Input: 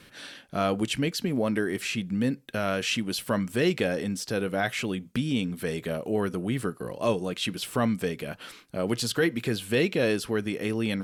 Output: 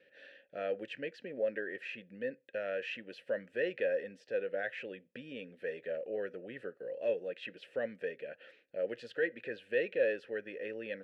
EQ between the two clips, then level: treble shelf 5.9 kHz -11.5 dB; dynamic bell 1.5 kHz, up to +7 dB, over -48 dBFS, Q 2.1; vowel filter e; 0.0 dB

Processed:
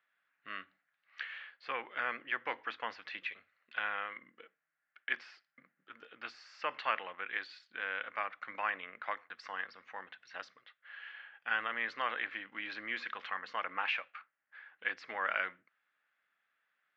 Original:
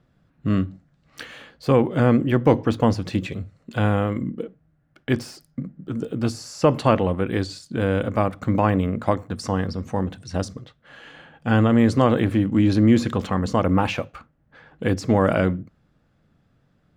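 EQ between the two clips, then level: ladder band-pass 2.3 kHz, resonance 35%; distance through air 230 m; +8.5 dB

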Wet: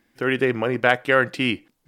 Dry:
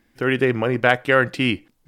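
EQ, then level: bass shelf 100 Hz -10.5 dB; -1.0 dB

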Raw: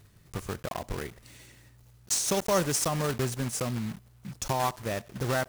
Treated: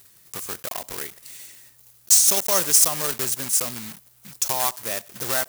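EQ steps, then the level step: RIAA curve recording; +1.5 dB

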